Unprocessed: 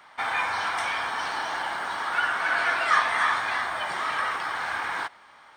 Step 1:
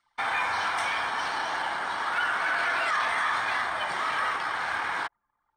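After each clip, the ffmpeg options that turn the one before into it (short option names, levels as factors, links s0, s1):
-filter_complex "[0:a]anlmdn=1,acrossover=split=4400[s0][s1];[s1]acompressor=mode=upward:threshold=0.00224:ratio=2.5[s2];[s0][s2]amix=inputs=2:normalize=0,alimiter=limit=0.119:level=0:latency=1:release=11"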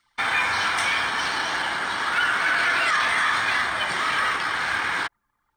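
-af "equalizer=f=800:t=o:w=1.5:g=-9,volume=2.82"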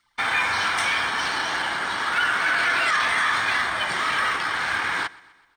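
-af "aecho=1:1:126|252|378|504:0.075|0.0412|0.0227|0.0125"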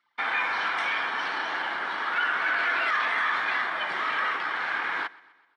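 -af "highpass=270,lowpass=2900,volume=0.668"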